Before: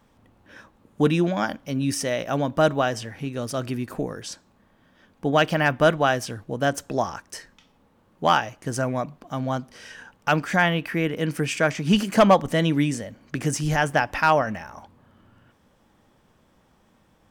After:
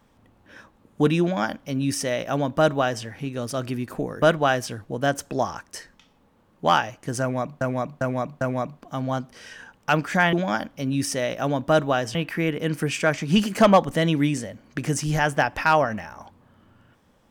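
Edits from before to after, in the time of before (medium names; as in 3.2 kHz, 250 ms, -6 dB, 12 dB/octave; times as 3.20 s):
1.22–3.04 s: copy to 10.72 s
4.22–5.81 s: delete
8.80–9.20 s: loop, 4 plays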